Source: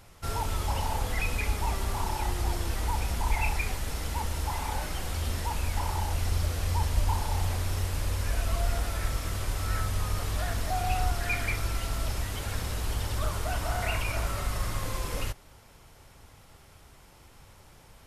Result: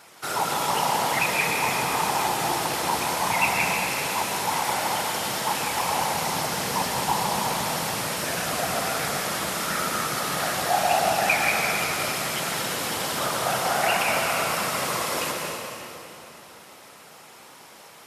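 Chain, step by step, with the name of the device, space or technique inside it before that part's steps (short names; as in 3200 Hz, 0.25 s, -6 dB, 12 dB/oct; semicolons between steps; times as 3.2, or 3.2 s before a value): whispering ghost (whisperiser; HPF 410 Hz 12 dB/oct; reverb RT60 3.1 s, pre-delay 0.108 s, DRR 0 dB); gain +8 dB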